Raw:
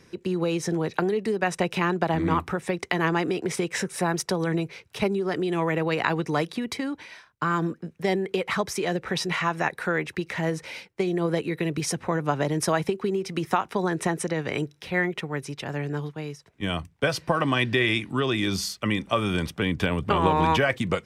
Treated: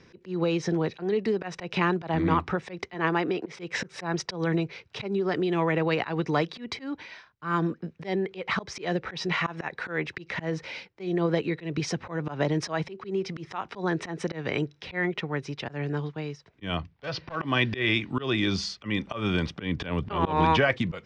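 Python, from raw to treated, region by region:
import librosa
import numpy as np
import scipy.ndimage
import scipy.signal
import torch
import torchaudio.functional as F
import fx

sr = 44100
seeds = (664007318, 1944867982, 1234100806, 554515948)

y = fx.chain(x, sr, fx.highpass(hz=200.0, slope=6),
    fx.high_shelf(hz=4800.0, db=-8.0), at=(2.94, 3.59))
y = fx.chain(y, sr, fx.lowpass(hz=5300.0, slope=24),
    fx.clip_hard(threshold_db=-20.0), at=(16.77, 17.36))
y = scipy.signal.sosfilt(scipy.signal.butter(4, 5400.0, 'lowpass', fs=sr, output='sos'), y)
y = fx.auto_swell(y, sr, attack_ms=139.0)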